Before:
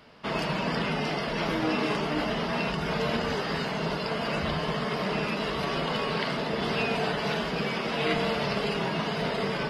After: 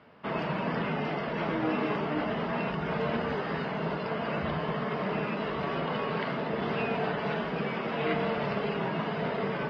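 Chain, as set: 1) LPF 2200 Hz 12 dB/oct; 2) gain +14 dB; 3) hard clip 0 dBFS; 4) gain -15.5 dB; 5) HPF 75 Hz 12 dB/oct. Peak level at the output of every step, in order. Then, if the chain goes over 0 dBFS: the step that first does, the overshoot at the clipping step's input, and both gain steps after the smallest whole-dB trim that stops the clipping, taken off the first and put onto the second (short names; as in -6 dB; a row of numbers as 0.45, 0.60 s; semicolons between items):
-16.0, -2.0, -2.0, -17.5, -17.0 dBFS; no overload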